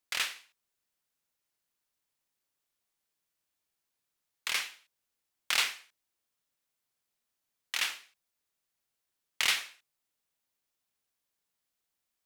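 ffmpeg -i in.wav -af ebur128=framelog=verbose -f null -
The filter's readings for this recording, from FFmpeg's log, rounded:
Integrated loudness:
  I:         -31.3 LUFS
  Threshold: -42.7 LUFS
Loudness range:
  LRA:         5.9 LU
  Threshold: -57.1 LUFS
  LRA low:   -41.3 LUFS
  LRA high:  -35.5 LUFS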